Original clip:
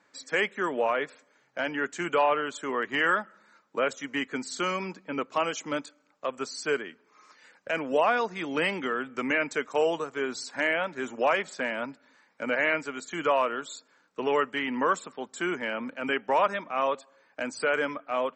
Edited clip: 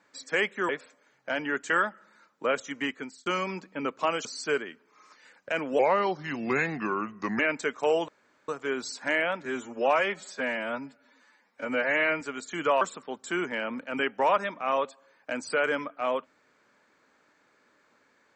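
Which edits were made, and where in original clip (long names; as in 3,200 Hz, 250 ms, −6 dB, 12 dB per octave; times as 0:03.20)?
0:00.69–0:00.98: remove
0:01.99–0:03.03: remove
0:04.16–0:04.59: fade out linear
0:05.58–0:06.44: remove
0:07.98–0:09.31: play speed 83%
0:10.00: splice in room tone 0.40 s
0:10.97–0:12.81: time-stretch 1.5×
0:13.41–0:14.91: remove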